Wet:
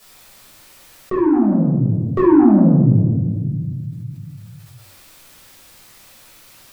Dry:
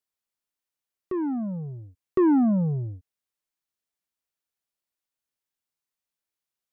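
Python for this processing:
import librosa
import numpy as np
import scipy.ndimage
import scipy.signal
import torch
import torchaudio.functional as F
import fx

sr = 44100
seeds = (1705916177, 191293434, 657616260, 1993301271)

y = fx.room_shoebox(x, sr, seeds[0], volume_m3=530.0, walls='mixed', distance_m=6.0)
y = fx.env_flatten(y, sr, amount_pct=50)
y = F.gain(torch.from_numpy(y), -6.0).numpy()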